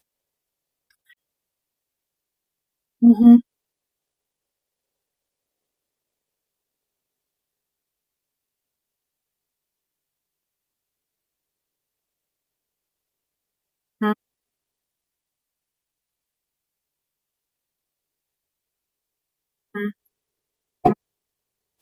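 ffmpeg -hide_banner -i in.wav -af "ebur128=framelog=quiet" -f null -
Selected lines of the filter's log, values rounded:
Integrated loudness:
  I:         -16.5 LUFS
  Threshold: -29.5 LUFS
Loudness range:
  LRA:        19.1 LU
  Threshold: -44.3 LUFS
  LRA low:   -39.1 LUFS
  LRA high:  -20.0 LUFS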